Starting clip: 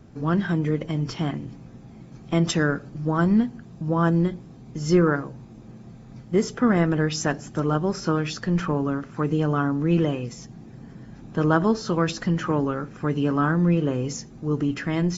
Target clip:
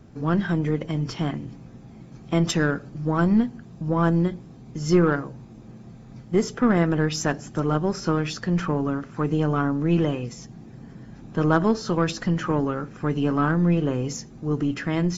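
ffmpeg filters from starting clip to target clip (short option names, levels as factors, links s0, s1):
-af "aeval=exprs='0.473*(cos(1*acos(clip(val(0)/0.473,-1,1)))-cos(1*PI/2))+0.015*(cos(6*acos(clip(val(0)/0.473,-1,1)))-cos(6*PI/2))':c=same"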